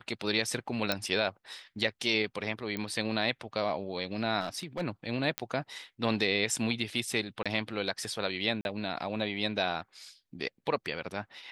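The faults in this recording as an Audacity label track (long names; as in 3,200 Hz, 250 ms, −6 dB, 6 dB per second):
0.920000	0.920000	click −12 dBFS
2.770000	2.770000	click −20 dBFS
4.400000	4.810000	clipping −28.5 dBFS
5.380000	5.380000	click −12 dBFS
7.430000	7.460000	drop-out 26 ms
8.610000	8.650000	drop-out 41 ms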